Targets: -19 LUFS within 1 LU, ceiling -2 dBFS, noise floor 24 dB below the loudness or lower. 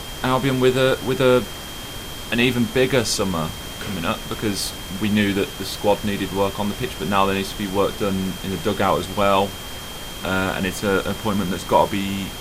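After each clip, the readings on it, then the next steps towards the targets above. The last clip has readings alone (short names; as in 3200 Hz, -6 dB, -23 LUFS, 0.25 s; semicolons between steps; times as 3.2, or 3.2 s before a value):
steady tone 3200 Hz; tone level -37 dBFS; noise floor -33 dBFS; noise floor target -46 dBFS; loudness -21.5 LUFS; peak -2.5 dBFS; loudness target -19.0 LUFS
-> notch 3200 Hz, Q 30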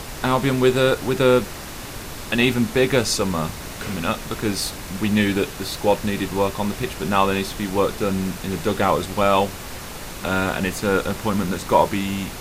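steady tone none; noise floor -34 dBFS; noise floor target -46 dBFS
-> noise print and reduce 12 dB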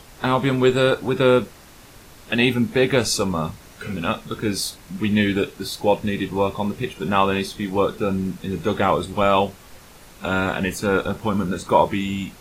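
noise floor -46 dBFS; loudness -21.5 LUFS; peak -2.0 dBFS; loudness target -19.0 LUFS
-> gain +2.5 dB; limiter -2 dBFS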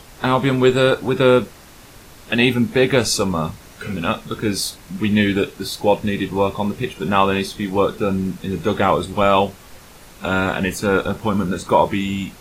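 loudness -19.0 LUFS; peak -2.0 dBFS; noise floor -43 dBFS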